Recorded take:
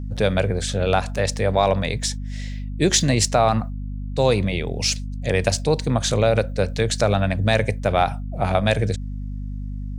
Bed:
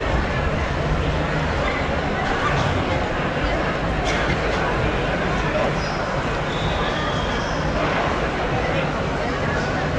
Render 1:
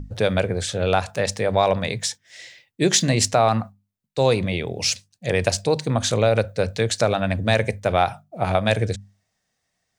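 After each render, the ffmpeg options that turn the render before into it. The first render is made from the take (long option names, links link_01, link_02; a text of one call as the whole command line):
ffmpeg -i in.wav -af "bandreject=frequency=50:width_type=h:width=6,bandreject=frequency=100:width_type=h:width=6,bandreject=frequency=150:width_type=h:width=6,bandreject=frequency=200:width_type=h:width=6,bandreject=frequency=250:width_type=h:width=6" out.wav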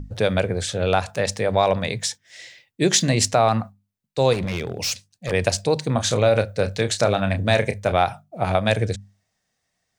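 ffmpeg -i in.wav -filter_complex "[0:a]asettb=1/sr,asplit=3[link_01][link_02][link_03];[link_01]atrim=end=4.334[link_04];[link_02]atrim=start=4.33:end=5.32,asetpts=PTS-STARTPTS,afade=type=in:duration=0.004:curve=qsin,afade=type=out:start_time=0.986:duration=0.004:curve=qsin,asoftclip=type=hard:threshold=-21dB[link_05];[link_03]atrim=start=5.316[link_06];[link_04][link_05]acrossfade=duration=0.004:curve1=hsin:curve2=qsin[link_07];[link_07][link_06]acrossfade=duration=0.004:curve1=qsin:curve2=hsin,asettb=1/sr,asplit=3[link_08][link_09][link_10];[link_08]atrim=end=5.934[link_11];[link_09]atrim=start=5.93:end=7.92,asetpts=PTS-STARTPTS,afade=type=in:duration=0.004:curve=qsin,afade=type=out:start_time=1.986:duration=0.004:curve=qsin,asplit=2[link_12][link_13];[link_13]adelay=30,volume=-9dB[link_14];[link_12][link_14]amix=inputs=2:normalize=0,atrim=end_sample=87759[link_15];[link_10]atrim=start=7.916[link_16];[link_11][link_15]acrossfade=duration=0.004:curve1=hsin:curve2=qsin[link_17];[link_17][link_16]acrossfade=duration=0.004:curve1=qsin:curve2=hsin" out.wav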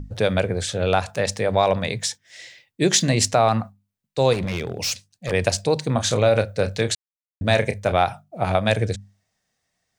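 ffmpeg -i in.wav -filter_complex "[0:a]asplit=3[link_01][link_02][link_03];[link_01]atrim=end=6.95,asetpts=PTS-STARTPTS,afade=type=out:start_time=6.946:duration=0.004:curve=hsin[link_04];[link_02]atrim=start=6.95:end=7.41,asetpts=PTS-STARTPTS,volume=0[link_05];[link_03]atrim=start=7.41,asetpts=PTS-STARTPTS,afade=type=in:duration=0.004:curve=hsin[link_06];[link_04][link_05][link_06]concat=n=3:v=0:a=1" out.wav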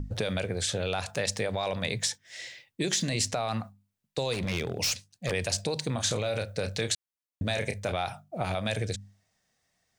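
ffmpeg -i in.wav -filter_complex "[0:a]alimiter=limit=-12.5dB:level=0:latency=1:release=10,acrossover=split=2300|6700[link_01][link_02][link_03];[link_01]acompressor=threshold=-29dB:ratio=4[link_04];[link_02]acompressor=threshold=-30dB:ratio=4[link_05];[link_03]acompressor=threshold=-33dB:ratio=4[link_06];[link_04][link_05][link_06]amix=inputs=3:normalize=0" out.wav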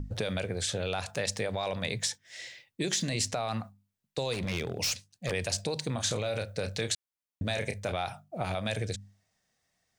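ffmpeg -i in.wav -af "volume=-2dB" out.wav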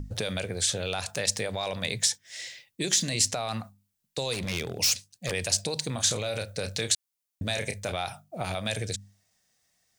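ffmpeg -i in.wav -af "highshelf=frequency=3900:gain=10" out.wav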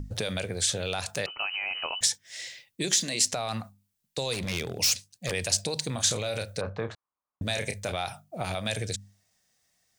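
ffmpeg -i in.wav -filter_complex "[0:a]asettb=1/sr,asplit=3[link_01][link_02][link_03];[link_01]atrim=end=1.264[link_04];[link_02]atrim=start=1.26:end=2.01,asetpts=PTS-STARTPTS,afade=type=in:duration=0.004:curve=qsin,afade=type=out:start_time=0.746:duration=0.004:curve=qsin,lowpass=frequency=2600:width_type=q:width=0.5098,lowpass=frequency=2600:width_type=q:width=0.6013,lowpass=frequency=2600:width_type=q:width=0.9,lowpass=frequency=2600:width_type=q:width=2.563,afreqshift=-3100[link_05];[link_03]atrim=start=2.006[link_06];[link_04][link_05]acrossfade=duration=0.004:curve1=hsin:curve2=qsin[link_07];[link_07][link_06]acrossfade=duration=0.004:curve1=qsin:curve2=hsin,asettb=1/sr,asplit=3[link_08][link_09][link_10];[link_08]atrim=end=2.934[link_11];[link_09]atrim=start=2.93:end=3.33,asetpts=PTS-STARTPTS,afade=type=in:duration=0.004:curve=qsin,afade=type=out:start_time=0.396:duration=0.004:curve=qsin,highpass=220[link_12];[link_10]atrim=start=3.326[link_13];[link_11][link_12]acrossfade=duration=0.004:curve1=hsin:curve2=qsin[link_14];[link_14][link_13]acrossfade=duration=0.004:curve1=qsin:curve2=hsin,asettb=1/sr,asplit=3[link_15][link_16][link_17];[link_15]atrim=end=6.614[link_18];[link_16]atrim=start=6.61:end=7.42,asetpts=PTS-STARTPTS,afade=type=in:duration=0.004:curve=qsin,afade=type=out:start_time=0.806:duration=0.004:curve=qsin,lowpass=frequency=1100:width_type=q:width=4.3[link_19];[link_17]atrim=start=7.416[link_20];[link_18][link_19]acrossfade=duration=0.004:curve1=hsin:curve2=qsin[link_21];[link_21][link_20]acrossfade=duration=0.004:curve1=qsin:curve2=hsin" out.wav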